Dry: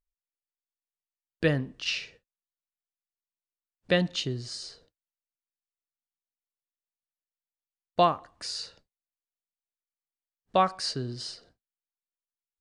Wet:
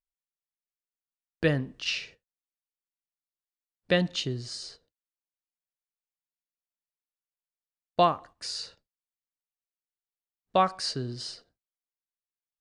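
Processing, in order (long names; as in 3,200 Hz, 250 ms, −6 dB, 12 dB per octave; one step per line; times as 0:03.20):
noise gate −48 dBFS, range −10 dB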